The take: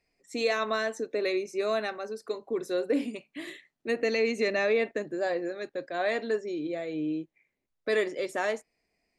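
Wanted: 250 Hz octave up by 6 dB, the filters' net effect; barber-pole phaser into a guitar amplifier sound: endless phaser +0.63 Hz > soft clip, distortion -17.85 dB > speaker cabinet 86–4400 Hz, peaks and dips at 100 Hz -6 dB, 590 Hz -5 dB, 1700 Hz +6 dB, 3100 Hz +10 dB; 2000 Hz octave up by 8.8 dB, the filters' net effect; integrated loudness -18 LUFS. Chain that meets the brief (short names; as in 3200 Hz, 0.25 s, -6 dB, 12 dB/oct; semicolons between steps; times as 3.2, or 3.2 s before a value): bell 250 Hz +8 dB; bell 2000 Hz +5 dB; endless phaser +0.63 Hz; soft clip -18.5 dBFS; speaker cabinet 86–4400 Hz, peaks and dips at 100 Hz -6 dB, 590 Hz -5 dB, 1700 Hz +6 dB, 3100 Hz +10 dB; gain +12 dB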